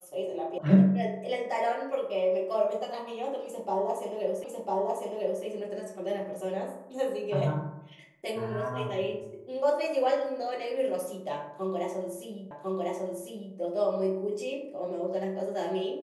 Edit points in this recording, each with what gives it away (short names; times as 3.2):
0.58 sound cut off
4.44 repeat of the last 1 s
12.51 repeat of the last 1.05 s